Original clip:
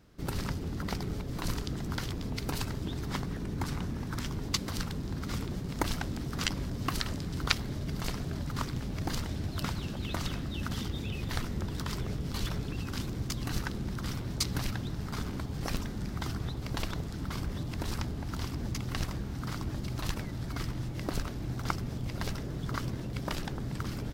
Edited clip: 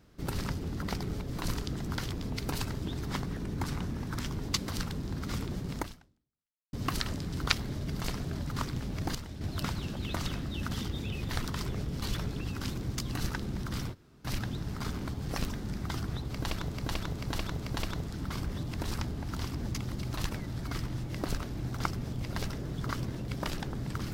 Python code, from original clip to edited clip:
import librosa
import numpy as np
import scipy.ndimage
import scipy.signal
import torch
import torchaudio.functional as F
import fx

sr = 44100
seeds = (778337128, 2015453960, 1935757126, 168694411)

y = fx.edit(x, sr, fx.fade_out_span(start_s=5.77, length_s=0.96, curve='exp'),
    fx.clip_gain(start_s=9.15, length_s=0.26, db=-7.0),
    fx.cut(start_s=11.46, length_s=0.32),
    fx.room_tone_fill(start_s=14.25, length_s=0.33, crossfade_s=0.04),
    fx.repeat(start_s=16.62, length_s=0.44, count=4),
    fx.cut(start_s=18.92, length_s=0.85), tone=tone)